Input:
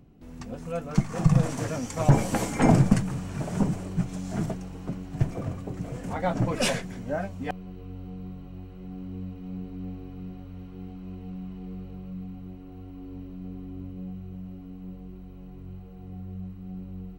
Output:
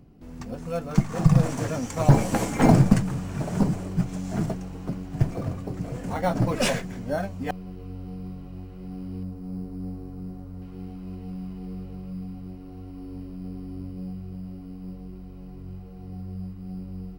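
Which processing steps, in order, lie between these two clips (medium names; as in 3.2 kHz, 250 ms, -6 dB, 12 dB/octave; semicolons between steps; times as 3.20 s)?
in parallel at -10 dB: sample-and-hold 9×; 9.23–10.62 s: on the sum: peaking EQ 2.8 kHz -10 dB 1.3 oct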